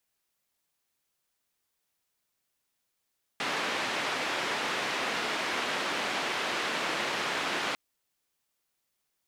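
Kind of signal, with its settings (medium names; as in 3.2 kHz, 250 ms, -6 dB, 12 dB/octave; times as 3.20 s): noise band 240–2600 Hz, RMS -31.5 dBFS 4.35 s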